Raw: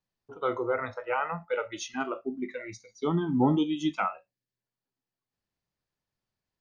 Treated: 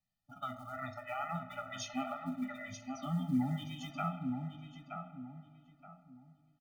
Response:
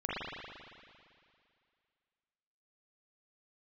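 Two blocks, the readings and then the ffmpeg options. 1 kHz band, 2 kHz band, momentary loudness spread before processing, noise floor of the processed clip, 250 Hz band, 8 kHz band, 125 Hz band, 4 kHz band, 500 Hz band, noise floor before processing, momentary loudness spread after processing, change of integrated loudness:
-8.0 dB, -10.0 dB, 12 LU, -74 dBFS, -7.5 dB, n/a, -4.0 dB, -6.0 dB, -15.5 dB, under -85 dBFS, 22 LU, -9.5 dB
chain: -filter_complex "[0:a]bandreject=f=1.1k:w=12,bandreject=f=113.4:t=h:w=4,bandreject=f=226.8:t=h:w=4,bandreject=f=340.2:t=h:w=4,bandreject=f=453.6:t=h:w=4,bandreject=f=567:t=h:w=4,bandreject=f=680.4:t=h:w=4,bandreject=f=793.8:t=h:w=4,bandreject=f=907.2:t=h:w=4,bandreject=f=1.0206k:t=h:w=4,bandreject=f=1.134k:t=h:w=4,bandreject=f=1.2474k:t=h:w=4,bandreject=f=1.3608k:t=h:w=4,bandreject=f=1.4742k:t=h:w=4,bandreject=f=1.5876k:t=h:w=4,bandreject=f=1.701k:t=h:w=4,bandreject=f=1.8144k:t=h:w=4,bandreject=f=1.9278k:t=h:w=4,bandreject=f=2.0412k:t=h:w=4,bandreject=f=2.1546k:t=h:w=4,bandreject=f=2.268k:t=h:w=4,acrossover=split=380|3000[a][b][c];[b]acompressor=threshold=-35dB:ratio=2[d];[a][d][c]amix=inputs=3:normalize=0,alimiter=limit=-24dB:level=0:latency=1:release=352,acrusher=bits=8:mode=log:mix=0:aa=0.000001,asplit=2[e][f];[f]adelay=923,lowpass=f=1.6k:p=1,volume=-5dB,asplit=2[g][h];[h]adelay=923,lowpass=f=1.6k:p=1,volume=0.32,asplit=2[i][j];[j]adelay=923,lowpass=f=1.6k:p=1,volume=0.32,asplit=2[k][l];[l]adelay=923,lowpass=f=1.6k:p=1,volume=0.32[m];[e][g][i][k][m]amix=inputs=5:normalize=0,asplit=2[n][o];[1:a]atrim=start_sample=2205[p];[o][p]afir=irnorm=-1:irlink=0,volume=-18dB[q];[n][q]amix=inputs=2:normalize=0,afftfilt=real='re*eq(mod(floor(b*sr/1024/290),2),0)':imag='im*eq(mod(floor(b*sr/1024/290),2),0)':win_size=1024:overlap=0.75,volume=-1dB"

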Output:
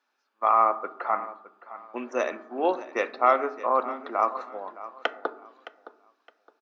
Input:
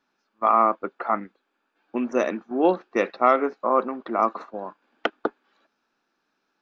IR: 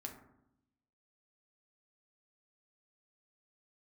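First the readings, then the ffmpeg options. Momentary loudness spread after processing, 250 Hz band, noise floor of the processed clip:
17 LU, -10.0 dB, -76 dBFS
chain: -filter_complex "[0:a]highpass=490,aecho=1:1:615|1230|1845:0.158|0.0412|0.0107,asplit=2[a][b];[1:a]atrim=start_sample=2205[c];[b][c]afir=irnorm=-1:irlink=0,volume=-2.5dB[d];[a][d]amix=inputs=2:normalize=0,volume=-4.5dB"

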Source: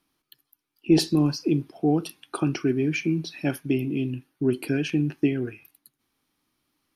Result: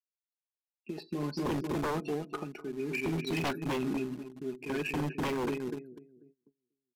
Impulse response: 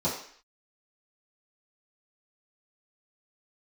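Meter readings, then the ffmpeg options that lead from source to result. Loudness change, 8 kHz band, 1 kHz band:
-9.5 dB, -10.0 dB, 0.0 dB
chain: -filter_complex "[0:a]acrossover=split=3600[a][b];[b]acompressor=threshold=-44dB:ratio=4:attack=1:release=60[c];[a][c]amix=inputs=2:normalize=0,highpass=f=310:p=1,afftdn=nr=26:nf=-36,asuperstop=centerf=3200:order=12:qfactor=5,asplit=2[d][e];[e]adelay=245,lowpass=f=1.1k:p=1,volume=-8.5dB,asplit=2[f][g];[g]adelay=245,lowpass=f=1.1k:p=1,volume=0.52,asplit=2[h][i];[i]adelay=245,lowpass=f=1.1k:p=1,volume=0.52,asplit=2[j][k];[k]adelay=245,lowpass=f=1.1k:p=1,volume=0.52,asplit=2[l][m];[m]adelay=245,lowpass=f=1.1k:p=1,volume=0.52,asplit=2[n][o];[o]adelay=245,lowpass=f=1.1k:p=1,volume=0.52[p];[f][h][j][l][n][p]amix=inputs=6:normalize=0[q];[d][q]amix=inputs=2:normalize=0,acompressor=threshold=-32dB:ratio=3,agate=range=-27dB:threshold=-52dB:ratio=16:detection=peak,asplit=2[r][s];[s]acrusher=bits=5:mix=0:aa=0.000001,volume=-11.5dB[t];[r][t]amix=inputs=2:normalize=0,aresample=32000,aresample=44100,tremolo=f=0.57:d=0.82,aecho=1:1:4.8:0.45,aeval=exprs='0.0266*(abs(mod(val(0)/0.0266+3,4)-2)-1)':c=same,volume=5.5dB"

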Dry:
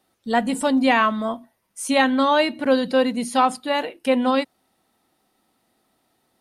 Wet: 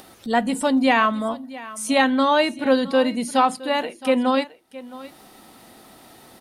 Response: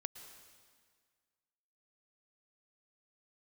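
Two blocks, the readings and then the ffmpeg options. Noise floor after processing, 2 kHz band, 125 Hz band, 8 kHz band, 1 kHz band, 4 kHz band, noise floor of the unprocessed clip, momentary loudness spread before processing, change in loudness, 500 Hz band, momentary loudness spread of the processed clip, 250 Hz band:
-50 dBFS, 0.0 dB, n/a, +0.5 dB, 0.0 dB, 0.0 dB, -70 dBFS, 9 LU, 0.0 dB, 0.0 dB, 17 LU, 0.0 dB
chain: -af "acompressor=mode=upward:threshold=-30dB:ratio=2.5,aecho=1:1:666:0.126"

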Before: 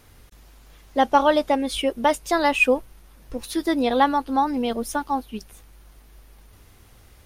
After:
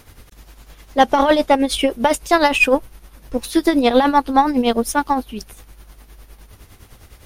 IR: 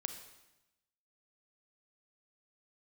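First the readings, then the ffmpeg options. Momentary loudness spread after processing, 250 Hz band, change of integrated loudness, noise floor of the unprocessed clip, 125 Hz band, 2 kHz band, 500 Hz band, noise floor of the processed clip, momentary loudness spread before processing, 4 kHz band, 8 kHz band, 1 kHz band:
10 LU, +6.5 dB, +5.0 dB, -52 dBFS, n/a, +5.0 dB, +5.0 dB, -48 dBFS, 11 LU, +6.0 dB, +7.0 dB, +4.5 dB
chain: -af "apsyclip=13dB,aeval=exprs='1.06*(cos(1*acos(clip(val(0)/1.06,-1,1)))-cos(1*PI/2))+0.0944*(cos(2*acos(clip(val(0)/1.06,-1,1)))-cos(2*PI/2))+0.0237*(cos(3*acos(clip(val(0)/1.06,-1,1)))-cos(3*PI/2))':c=same,tremolo=f=9.8:d=0.64,volume=-3dB"

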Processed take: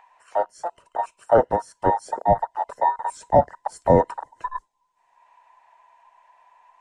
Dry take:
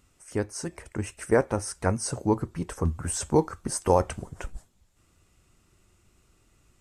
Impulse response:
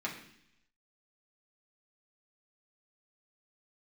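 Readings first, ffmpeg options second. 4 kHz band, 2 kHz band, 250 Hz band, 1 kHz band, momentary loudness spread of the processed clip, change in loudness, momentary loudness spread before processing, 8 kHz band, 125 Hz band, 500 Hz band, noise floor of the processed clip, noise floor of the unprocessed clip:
n/a, -0.5 dB, -1.0 dB, +11.5 dB, 14 LU, +5.0 dB, 12 LU, -13.5 dB, -1.5 dB, +5.5 dB, -70 dBFS, -66 dBFS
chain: -filter_complex "[0:a]afftfilt=real='real(if(between(b,1,1008),(2*floor((b-1)/48)+1)*48-b,b),0)':imag='imag(if(between(b,1,1008),(2*floor((b-1)/48)+1)*48-b,b),0)*if(between(b,1,1008),-1,1)':win_size=2048:overlap=0.75,afwtdn=0.0355,lowpass=8.6k,acrossover=split=370|570|2600[a][b][c][d];[c]acompressor=mode=upward:threshold=-44dB:ratio=2.5[e];[a][b][e][d]amix=inputs=4:normalize=0,volume=5.5dB"

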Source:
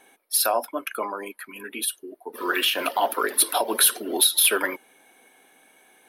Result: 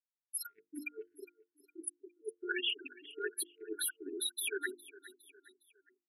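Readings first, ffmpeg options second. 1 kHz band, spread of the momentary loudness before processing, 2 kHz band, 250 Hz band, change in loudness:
-27.0 dB, 18 LU, -13.0 dB, -13.0 dB, -17.0 dB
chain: -af "lowshelf=f=420:g=3.5,afftfilt=real='re*gte(hypot(re,im),0.224)':imag='im*gte(hypot(re,im),0.224)':win_size=1024:overlap=0.75,areverse,acompressor=threshold=-30dB:ratio=8,areverse,aecho=1:1:410|820|1230:0.0944|0.0387|0.0159,afftfilt=real='re*(1-between(b*sr/4096,450,1400))':imag='im*(1-between(b*sr/4096,450,1400))':win_size=4096:overlap=0.75,alimiter=level_in=1dB:limit=-24dB:level=0:latency=1:release=468,volume=-1dB,bass=f=250:g=-11,treble=f=4k:g=-2,bandreject=f=50:t=h:w=6,bandreject=f=100:t=h:w=6,bandreject=f=150:t=h:w=6,bandreject=f=200:t=h:w=6,bandreject=f=250:t=h:w=6,bandreject=f=300:t=h:w=6,bandreject=f=350:t=h:w=6,volume=1dB"

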